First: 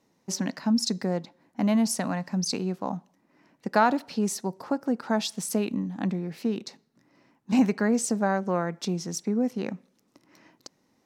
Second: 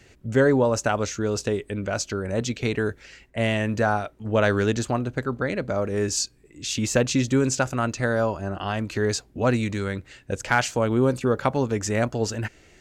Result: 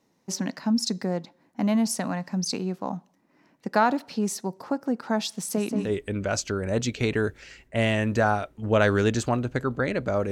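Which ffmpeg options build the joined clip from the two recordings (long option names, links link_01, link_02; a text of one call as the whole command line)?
ffmpeg -i cue0.wav -i cue1.wav -filter_complex "[0:a]asettb=1/sr,asplit=3[link_01][link_02][link_03];[link_01]atrim=end=5.304[link_04];[link_02]atrim=start=5.3:end=5.93,asetpts=PTS-STARTPTS,afade=type=in:duration=0.004:curve=qsin,afade=type=out:start_time=0.626:duration=0.004:curve=qsin,asplit=2[link_05][link_06];[link_06]adelay=180,lowpass=frequency=3500:poles=1,volume=-5dB,asplit=2[link_07][link_08];[link_08]adelay=180,lowpass=frequency=3500:poles=1,volume=0.54,asplit=2[link_09][link_10];[link_10]adelay=180,lowpass=frequency=3500:poles=1,volume=0.54,asplit=2[link_11][link_12];[link_12]adelay=180,lowpass=frequency=3500:poles=1,volume=0.54,asplit=2[link_13][link_14];[link_14]adelay=180,lowpass=frequency=3500:poles=1,volume=0.54,asplit=2[link_15][link_16];[link_16]adelay=180,lowpass=frequency=3500:poles=1,volume=0.54,asplit=2[link_17][link_18];[link_18]adelay=180,lowpass=frequency=3500:poles=1,volume=0.54[link_19];[link_05][link_07][link_09][link_11][link_13][link_15][link_17][link_19]amix=inputs=8:normalize=0,atrim=end_sample=27783[link_20];[link_03]atrim=start=5.926[link_21];[link_04][link_20]acrossfade=duration=0.004:curve1=hsin:curve2=qsin[link_22];[link_22][link_21]acrossfade=duration=0.004:curve1=qsin:curve2=hsin,apad=whole_dur=10.31,atrim=end=10.31,atrim=end=5.93,asetpts=PTS-STARTPTS[link_23];[1:a]atrim=start=1.43:end=5.93,asetpts=PTS-STARTPTS[link_24];[link_23][link_24]acrossfade=duration=0.12:curve1=tri:curve2=tri" out.wav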